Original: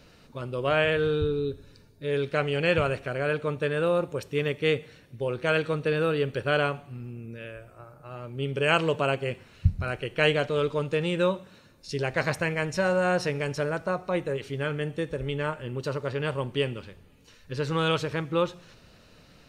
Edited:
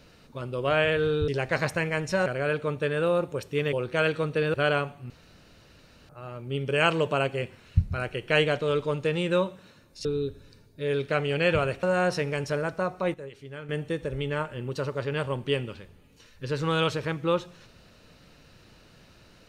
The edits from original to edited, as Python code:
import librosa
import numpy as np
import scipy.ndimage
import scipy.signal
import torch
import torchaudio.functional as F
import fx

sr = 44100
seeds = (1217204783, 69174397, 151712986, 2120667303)

y = fx.edit(x, sr, fx.swap(start_s=1.28, length_s=1.78, other_s=11.93, other_length_s=0.98),
    fx.cut(start_s=4.53, length_s=0.7),
    fx.cut(start_s=6.04, length_s=0.38),
    fx.room_tone_fill(start_s=6.98, length_s=0.99),
    fx.clip_gain(start_s=14.22, length_s=0.55, db=-10.5), tone=tone)